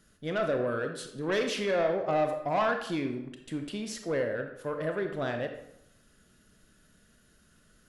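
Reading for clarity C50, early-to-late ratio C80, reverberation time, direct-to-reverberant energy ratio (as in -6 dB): 7.0 dB, 10.0 dB, 0.80 s, 5.0 dB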